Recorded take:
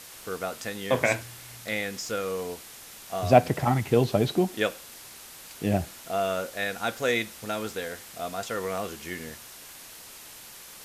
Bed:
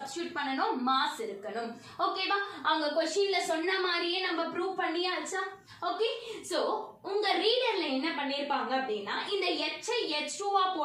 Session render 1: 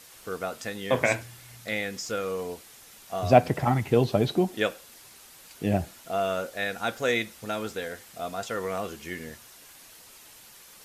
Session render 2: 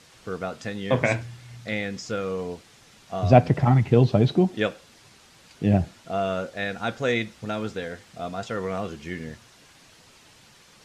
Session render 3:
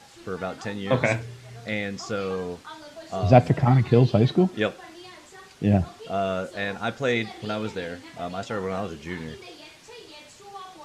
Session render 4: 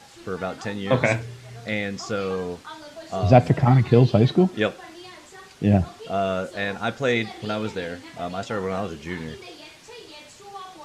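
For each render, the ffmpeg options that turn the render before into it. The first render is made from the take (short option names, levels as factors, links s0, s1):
-af "afftdn=nr=6:nf=-46"
-af "lowpass=6000,equalizer=f=130:t=o:w=2:g=8.5"
-filter_complex "[1:a]volume=0.211[s0];[0:a][s0]amix=inputs=2:normalize=0"
-af "volume=1.26,alimiter=limit=0.794:level=0:latency=1"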